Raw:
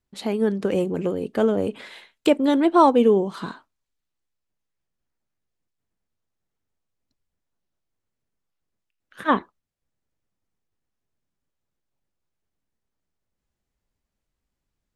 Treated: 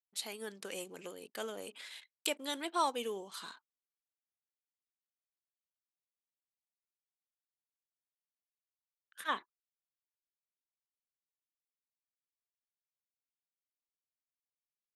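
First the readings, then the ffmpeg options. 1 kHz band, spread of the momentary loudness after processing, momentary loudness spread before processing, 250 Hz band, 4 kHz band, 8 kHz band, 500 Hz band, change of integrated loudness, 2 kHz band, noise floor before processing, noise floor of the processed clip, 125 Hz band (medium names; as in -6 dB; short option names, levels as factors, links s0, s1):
-15.0 dB, 15 LU, 14 LU, -26.0 dB, -4.5 dB, no reading, -21.0 dB, -18.5 dB, -10.0 dB, -83 dBFS, under -85 dBFS, under -25 dB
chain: -af "anlmdn=0.0251,aderivative,volume=1.26"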